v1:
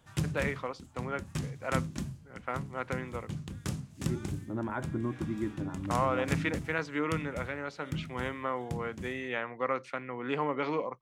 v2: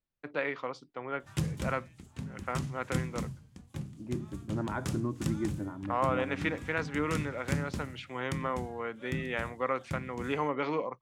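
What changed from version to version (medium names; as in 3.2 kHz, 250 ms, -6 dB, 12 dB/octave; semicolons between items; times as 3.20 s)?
background: entry +1.20 s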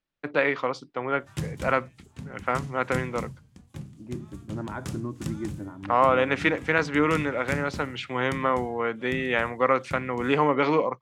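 first voice +9.5 dB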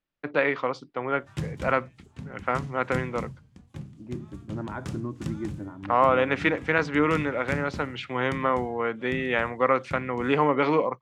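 master: add treble shelf 7.3 kHz -11.5 dB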